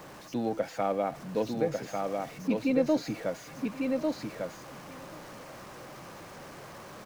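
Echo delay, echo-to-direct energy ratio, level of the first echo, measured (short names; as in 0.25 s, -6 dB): 1.088 s, -3.5 dB, -21.0 dB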